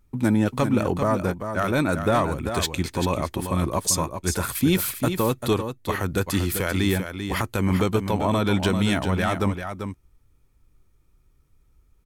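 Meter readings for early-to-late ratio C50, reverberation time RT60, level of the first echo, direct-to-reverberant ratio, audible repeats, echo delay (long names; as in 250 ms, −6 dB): no reverb audible, no reverb audible, −8.0 dB, no reverb audible, 1, 392 ms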